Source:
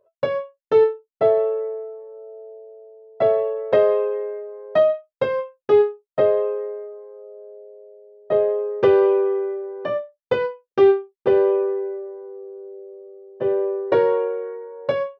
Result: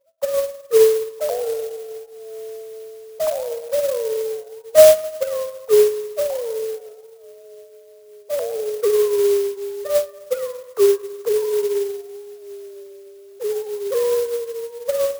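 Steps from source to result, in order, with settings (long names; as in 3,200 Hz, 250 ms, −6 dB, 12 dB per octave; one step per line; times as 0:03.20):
three sine waves on the formant tracks
spring reverb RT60 1.4 s, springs 52/59 ms, chirp 50 ms, DRR 9.5 dB
converter with an unsteady clock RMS 0.055 ms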